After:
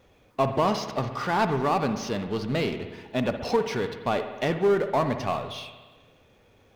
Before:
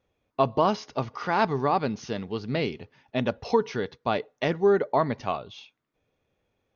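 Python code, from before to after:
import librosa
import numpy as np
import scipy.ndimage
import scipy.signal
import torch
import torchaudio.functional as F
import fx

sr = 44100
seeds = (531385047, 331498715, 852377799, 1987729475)

y = fx.power_curve(x, sr, exponent=0.7)
y = fx.rev_spring(y, sr, rt60_s=1.4, pass_ms=(59,), chirp_ms=35, drr_db=8.0)
y = F.gain(torch.from_numpy(y), -3.5).numpy()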